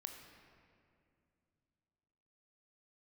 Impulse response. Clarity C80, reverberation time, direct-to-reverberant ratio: 6.5 dB, 2.5 s, 4.0 dB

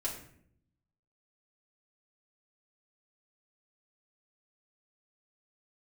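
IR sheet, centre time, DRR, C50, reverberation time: 27 ms, -5.0 dB, 6.5 dB, 0.65 s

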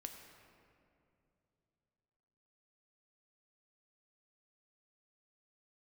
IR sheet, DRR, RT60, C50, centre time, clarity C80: 4.0 dB, 2.7 s, 5.5 dB, 52 ms, 6.0 dB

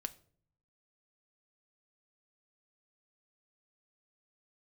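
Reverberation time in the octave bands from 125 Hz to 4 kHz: 1.0 s, 0.80 s, 0.65 s, 0.45 s, 0.40 s, 0.35 s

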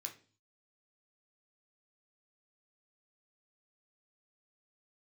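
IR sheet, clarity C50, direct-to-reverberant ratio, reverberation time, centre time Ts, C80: 12.5 dB, 2.5 dB, 0.40 s, 12 ms, 18.5 dB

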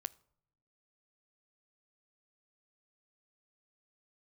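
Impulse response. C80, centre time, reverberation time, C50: 26.5 dB, 2 ms, no single decay rate, 23.5 dB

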